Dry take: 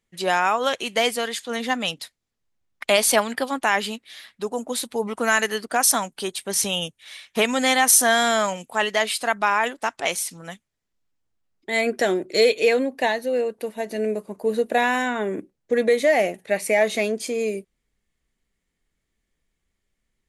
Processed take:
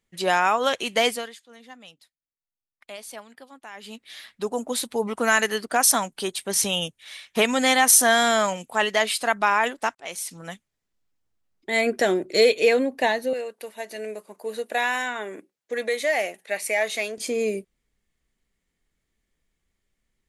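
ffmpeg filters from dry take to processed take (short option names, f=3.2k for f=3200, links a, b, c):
-filter_complex "[0:a]asettb=1/sr,asplit=3[a][b][c];[a]atrim=end=13.334[d];[b]atrim=start=13.33:end=17.18,asetpts=PTS-STARTPTS,afade=t=in:d=0.004:c=qsin,afade=t=out:st=3.846:d=0.004:c=qsin,highpass=f=1.1k:p=1[e];[c]atrim=start=17.176[f];[d][e]acrossfade=d=0.004:c1=hsin:c2=qsin[g];[g][f]acrossfade=d=0.004:c1=qsin:c2=hsin,asplit=4[h][i][j][k];[h]atrim=end=1.45,asetpts=PTS-STARTPTS,afade=t=out:st=1.09:d=0.36:c=qua:silence=0.0891251[l];[i]atrim=start=1.45:end=3.72,asetpts=PTS-STARTPTS,volume=-21dB[m];[j]atrim=start=3.72:end=9.95,asetpts=PTS-STARTPTS,afade=t=in:d=0.36:c=qua:silence=0.0891251,afade=t=out:st=6.226:d=0.004:c=hsin[n];[k]atrim=start=9.95,asetpts=PTS-STARTPTS,afade=t=in:d=0.46[o];[l][m][n][o]concat=n=4:v=0:a=1"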